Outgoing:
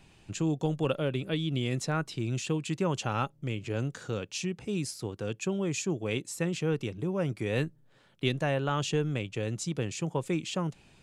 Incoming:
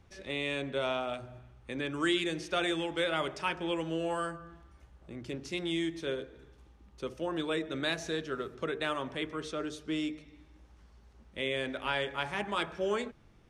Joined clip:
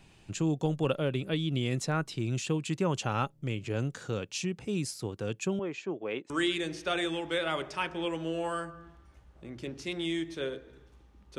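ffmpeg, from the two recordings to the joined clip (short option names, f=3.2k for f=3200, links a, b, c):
-filter_complex "[0:a]asettb=1/sr,asplit=3[a][b][c];[a]atrim=end=5.594[d];[b]atrim=start=5.59:end=6.3,asetpts=PTS-STARTPTS,afade=t=in:d=0.004:c=qsin,afade=t=out:st=0.706:d=0.004:c=qsin,highpass=330,lowpass=2.3k[e];[c]atrim=start=6.296[f];[d][e]acrossfade=d=0.004:c1=hsin:c2=qsin[g];[g][f]acrossfade=d=0.004:c1=qsin:c2=hsin,apad=whole_dur=11.38,atrim=end=11.38,atrim=end=6.302[h];[1:a]atrim=start=1.958:end=7.04[i];[h][i]acrossfade=d=0.004:c1=hsin:c2=hsin"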